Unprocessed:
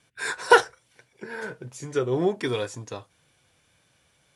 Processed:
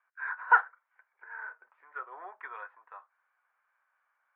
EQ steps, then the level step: HPF 1100 Hz 24 dB/oct; LPF 1500 Hz 24 dB/oct; air absorption 410 m; +3.0 dB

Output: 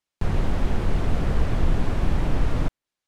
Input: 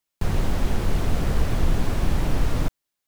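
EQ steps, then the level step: dynamic EQ 5500 Hz, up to -4 dB, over -57 dBFS, Q 0.84; air absorption 53 m; 0.0 dB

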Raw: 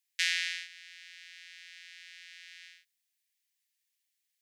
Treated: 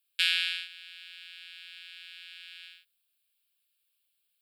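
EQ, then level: fixed phaser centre 1300 Hz, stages 8; +7.0 dB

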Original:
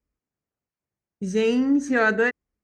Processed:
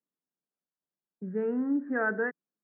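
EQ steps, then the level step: Chebyshev band-pass 160–1700 Hz, order 4; -8.0 dB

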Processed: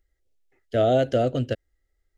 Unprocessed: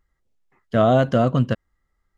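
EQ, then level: fixed phaser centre 440 Hz, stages 4; 0.0 dB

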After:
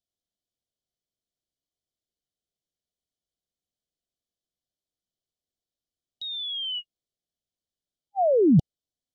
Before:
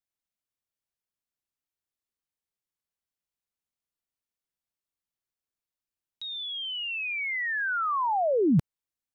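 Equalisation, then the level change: brick-wall FIR band-stop 770–2900 Hz; air absorption 69 m; +4.5 dB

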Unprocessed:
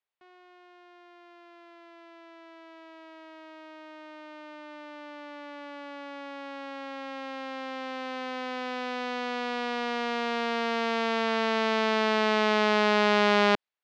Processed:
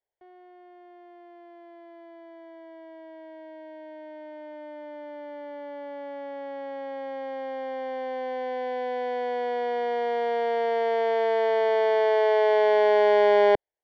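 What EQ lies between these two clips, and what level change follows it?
polynomial smoothing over 41 samples; fixed phaser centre 520 Hz, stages 4; +8.0 dB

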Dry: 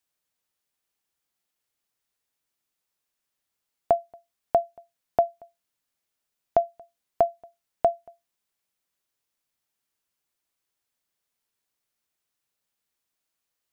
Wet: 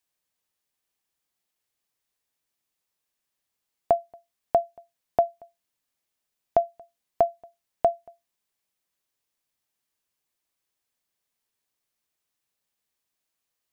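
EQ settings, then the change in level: notch 1400 Hz, Q 16; 0.0 dB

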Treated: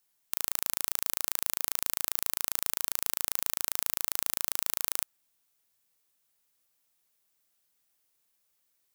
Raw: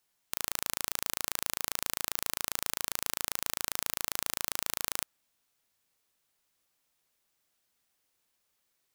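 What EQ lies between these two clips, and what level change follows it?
high shelf 8000 Hz +8.5 dB; -3.0 dB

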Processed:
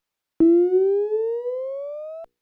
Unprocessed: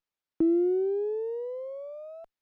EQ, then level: notches 60/120/180/240/300/360/420/480 Hz; +8.5 dB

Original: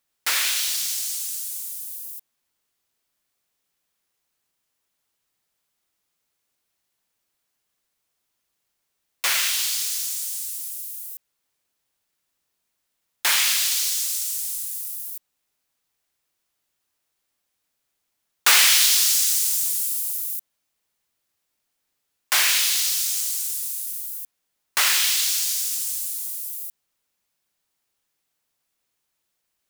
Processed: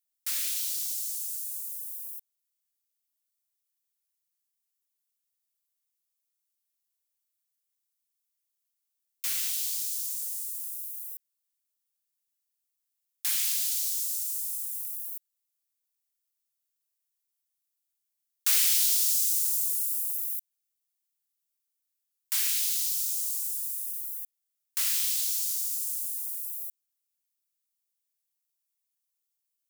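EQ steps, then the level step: pre-emphasis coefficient 0.9; -8.0 dB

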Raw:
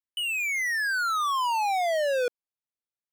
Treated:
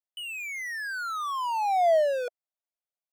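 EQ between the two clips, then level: resonant high-pass 650 Hz, resonance Q 4.9; -8.0 dB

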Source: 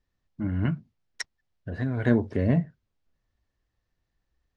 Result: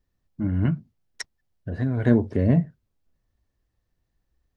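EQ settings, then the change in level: tilt shelf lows +4 dB, about 930 Hz; high shelf 5300 Hz +8 dB; 0.0 dB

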